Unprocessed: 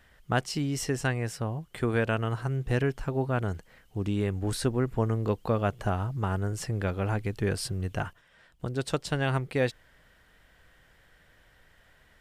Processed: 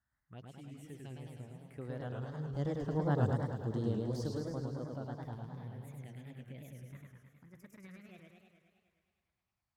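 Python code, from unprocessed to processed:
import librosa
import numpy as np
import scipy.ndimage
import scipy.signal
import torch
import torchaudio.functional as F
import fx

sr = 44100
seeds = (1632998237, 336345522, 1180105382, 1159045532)

p1 = fx.speed_glide(x, sr, from_pct=91, to_pct=159)
p2 = fx.doppler_pass(p1, sr, speed_mps=17, closest_m=5.0, pass_at_s=3.29)
p3 = scipy.signal.sosfilt(scipy.signal.butter(2, 72.0, 'highpass', fs=sr, output='sos'), p2)
p4 = fx.low_shelf(p3, sr, hz=240.0, db=4.5)
p5 = fx.env_phaser(p4, sr, low_hz=460.0, high_hz=2400.0, full_db=-37.0)
p6 = p5 + fx.echo_thinned(p5, sr, ms=103, feedback_pct=78, hz=230.0, wet_db=-14, dry=0)
p7 = fx.echo_warbled(p6, sr, ms=105, feedback_pct=66, rate_hz=2.8, cents=193, wet_db=-3.0)
y = F.gain(torch.from_numpy(p7), -4.0).numpy()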